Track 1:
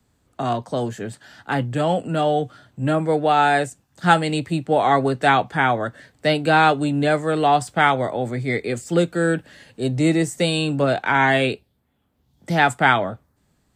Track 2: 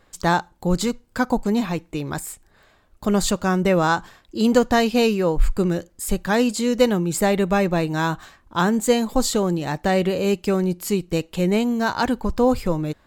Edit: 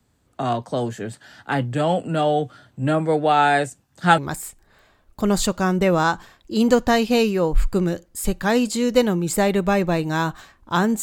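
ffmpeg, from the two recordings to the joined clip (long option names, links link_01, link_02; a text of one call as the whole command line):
ffmpeg -i cue0.wav -i cue1.wav -filter_complex "[0:a]apad=whole_dur=11.02,atrim=end=11.02,atrim=end=4.182[link_01];[1:a]atrim=start=2.018:end=8.86[link_02];[link_01][link_02]acrossfade=duration=0.004:curve1=hsin:curve2=hsin" out.wav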